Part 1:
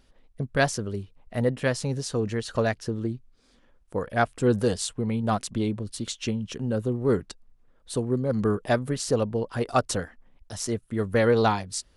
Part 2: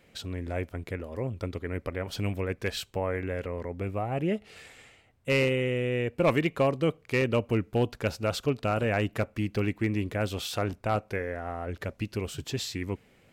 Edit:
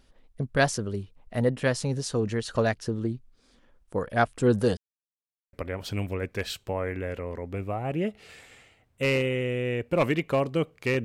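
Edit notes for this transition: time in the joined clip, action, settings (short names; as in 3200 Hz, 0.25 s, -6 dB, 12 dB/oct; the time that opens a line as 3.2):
part 1
4.77–5.53 mute
5.53 switch to part 2 from 1.8 s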